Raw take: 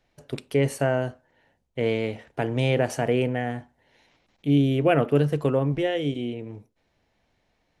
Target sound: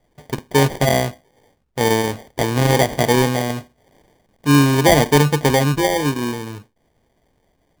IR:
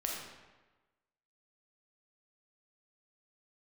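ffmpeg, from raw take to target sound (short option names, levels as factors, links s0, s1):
-af "acrusher=samples=33:mix=1:aa=0.000001,volume=2.24"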